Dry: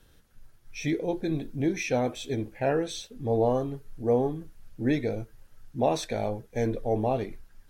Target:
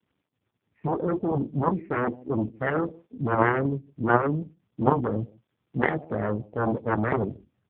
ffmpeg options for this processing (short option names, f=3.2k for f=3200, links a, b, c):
-filter_complex "[0:a]lowpass=1.8k,acrusher=samples=10:mix=1:aa=0.000001,asetnsamples=n=441:p=0,asendcmd='7.12 highpass f 78',highpass=160,aemphasis=mode=reproduction:type=riaa,acrusher=bits=9:mix=0:aa=0.000001,afwtdn=0.0251,asplit=2[a][b];[b]adelay=157.4,volume=-27dB,highshelf=f=4k:g=-3.54[c];[a][c]amix=inputs=2:normalize=0,aeval=exprs='0.355*(cos(1*acos(clip(val(0)/0.355,-1,1)))-cos(1*PI/2))+0.158*(cos(3*acos(clip(val(0)/0.355,-1,1)))-cos(3*PI/2))+0.0282*(cos(6*acos(clip(val(0)/0.355,-1,1)))-cos(6*PI/2))+0.0224*(cos(7*acos(clip(val(0)/0.355,-1,1)))-cos(7*PI/2))+0.00398*(cos(8*acos(clip(val(0)/0.355,-1,1)))-cos(8*PI/2))':c=same,volume=6dB" -ar 8000 -c:a libopencore_amrnb -b:a 4750